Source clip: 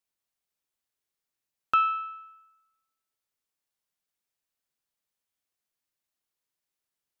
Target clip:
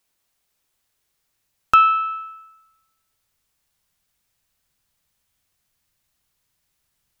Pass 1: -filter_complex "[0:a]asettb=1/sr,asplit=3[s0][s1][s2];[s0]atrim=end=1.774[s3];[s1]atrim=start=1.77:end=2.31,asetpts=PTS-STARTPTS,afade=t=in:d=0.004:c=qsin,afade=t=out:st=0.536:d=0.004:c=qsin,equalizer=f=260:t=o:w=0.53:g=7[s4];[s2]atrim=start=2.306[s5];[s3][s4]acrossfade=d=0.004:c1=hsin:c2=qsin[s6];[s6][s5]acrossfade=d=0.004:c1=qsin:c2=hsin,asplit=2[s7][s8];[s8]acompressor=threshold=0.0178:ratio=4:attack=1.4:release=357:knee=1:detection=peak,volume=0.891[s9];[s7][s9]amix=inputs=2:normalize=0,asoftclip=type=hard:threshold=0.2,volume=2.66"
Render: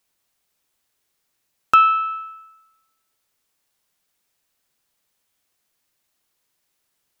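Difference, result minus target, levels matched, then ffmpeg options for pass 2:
125 Hz band -4.5 dB
-filter_complex "[0:a]asettb=1/sr,asplit=3[s0][s1][s2];[s0]atrim=end=1.774[s3];[s1]atrim=start=1.77:end=2.31,asetpts=PTS-STARTPTS,afade=t=in:d=0.004:c=qsin,afade=t=out:st=0.536:d=0.004:c=qsin,equalizer=f=260:t=o:w=0.53:g=7[s4];[s2]atrim=start=2.306[s5];[s3][s4]acrossfade=d=0.004:c1=hsin:c2=qsin[s6];[s6][s5]acrossfade=d=0.004:c1=qsin:c2=hsin,asplit=2[s7][s8];[s8]acompressor=threshold=0.0178:ratio=4:attack=1.4:release=357:knee=1:detection=peak,asubboost=boost=9:cutoff=160,volume=0.891[s9];[s7][s9]amix=inputs=2:normalize=0,asoftclip=type=hard:threshold=0.2,volume=2.66"

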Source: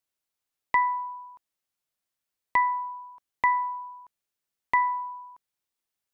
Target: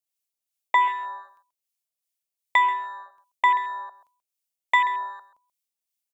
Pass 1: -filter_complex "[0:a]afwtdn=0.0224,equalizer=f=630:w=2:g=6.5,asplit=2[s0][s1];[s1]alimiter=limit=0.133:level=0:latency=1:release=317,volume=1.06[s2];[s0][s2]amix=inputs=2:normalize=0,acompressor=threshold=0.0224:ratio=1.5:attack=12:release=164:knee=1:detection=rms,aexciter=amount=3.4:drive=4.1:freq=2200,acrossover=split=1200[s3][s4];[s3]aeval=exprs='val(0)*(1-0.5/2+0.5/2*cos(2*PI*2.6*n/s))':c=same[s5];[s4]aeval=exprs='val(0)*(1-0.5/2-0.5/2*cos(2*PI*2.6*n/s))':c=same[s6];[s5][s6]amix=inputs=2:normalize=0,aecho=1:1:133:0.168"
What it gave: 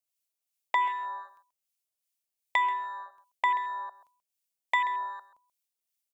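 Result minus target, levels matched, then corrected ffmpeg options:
compression: peak gain reduction +7.5 dB
-filter_complex "[0:a]afwtdn=0.0224,equalizer=f=630:w=2:g=6.5,asplit=2[s0][s1];[s1]alimiter=limit=0.133:level=0:latency=1:release=317,volume=1.06[s2];[s0][s2]amix=inputs=2:normalize=0,aexciter=amount=3.4:drive=4.1:freq=2200,acrossover=split=1200[s3][s4];[s3]aeval=exprs='val(0)*(1-0.5/2+0.5/2*cos(2*PI*2.6*n/s))':c=same[s5];[s4]aeval=exprs='val(0)*(1-0.5/2-0.5/2*cos(2*PI*2.6*n/s))':c=same[s6];[s5][s6]amix=inputs=2:normalize=0,aecho=1:1:133:0.168"

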